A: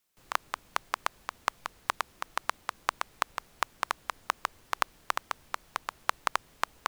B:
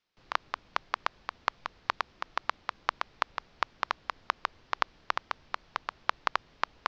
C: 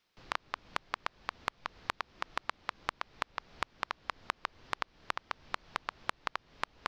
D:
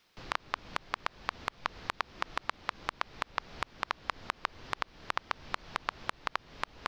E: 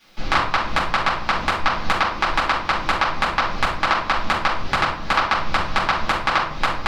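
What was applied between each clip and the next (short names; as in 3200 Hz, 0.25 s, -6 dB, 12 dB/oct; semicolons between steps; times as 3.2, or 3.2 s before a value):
steep low-pass 5300 Hz 36 dB/oct
compressor 6:1, threshold -37 dBFS, peak gain reduction 16 dB; gain +5.5 dB
limiter -18 dBFS, peak gain reduction 9 dB; gain +8.5 dB
shoebox room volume 520 m³, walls furnished, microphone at 8.2 m; gain +6 dB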